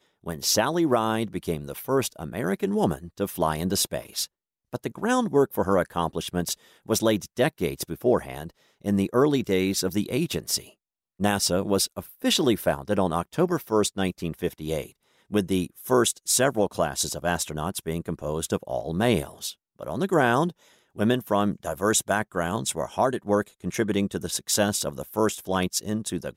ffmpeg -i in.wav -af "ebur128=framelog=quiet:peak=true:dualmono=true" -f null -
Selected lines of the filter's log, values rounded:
Integrated loudness:
  I:         -22.7 LUFS
  Threshold: -32.9 LUFS
Loudness range:
  LRA:         2.1 LU
  Threshold: -42.9 LUFS
  LRA low:   -24.2 LUFS
  LRA high:  -22.1 LUFS
True peak:
  Peak:       -9.4 dBFS